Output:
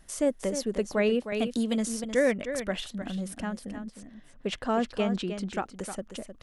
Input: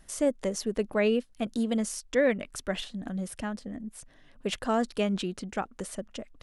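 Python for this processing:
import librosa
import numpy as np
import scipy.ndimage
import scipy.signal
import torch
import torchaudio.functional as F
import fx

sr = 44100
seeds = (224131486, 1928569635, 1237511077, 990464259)

y = fx.air_absorb(x, sr, metres=61.0, at=(3.89, 5.39))
y = y + 10.0 ** (-9.5 / 20.0) * np.pad(y, (int(309 * sr / 1000.0), 0))[:len(y)]
y = fx.band_squash(y, sr, depth_pct=70, at=(1.32, 2.04))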